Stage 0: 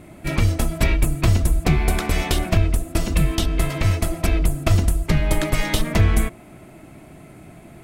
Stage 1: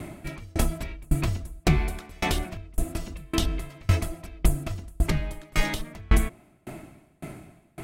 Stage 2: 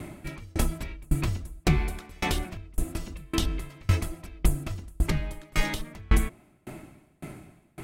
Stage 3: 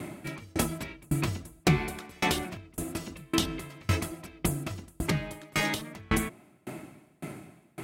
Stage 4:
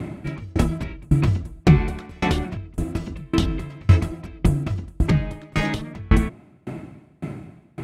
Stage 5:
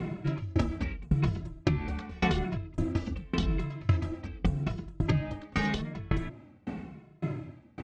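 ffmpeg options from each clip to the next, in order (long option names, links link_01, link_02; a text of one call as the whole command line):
ffmpeg -i in.wav -af "bandreject=frequency=490:width=15,alimiter=limit=-15.5dB:level=0:latency=1:release=283,aeval=exprs='val(0)*pow(10,-33*if(lt(mod(1.8*n/s,1),2*abs(1.8)/1000),1-mod(1.8*n/s,1)/(2*abs(1.8)/1000),(mod(1.8*n/s,1)-2*abs(1.8)/1000)/(1-2*abs(1.8)/1000))/20)':channel_layout=same,volume=8.5dB" out.wav
ffmpeg -i in.wav -af "bandreject=frequency=670:width=12,volume=-1.5dB" out.wav
ffmpeg -i in.wav -af "highpass=130,volume=2dB" out.wav
ffmpeg -i in.wav -af "aemphasis=mode=reproduction:type=bsi,volume=3.5dB" out.wav
ffmpeg -i in.wav -filter_complex "[0:a]lowpass=frequency=6400:width=0.5412,lowpass=frequency=6400:width=1.3066,acompressor=threshold=-19dB:ratio=10,asplit=2[link_01][link_02];[link_02]adelay=2.3,afreqshift=-0.86[link_03];[link_01][link_03]amix=inputs=2:normalize=1" out.wav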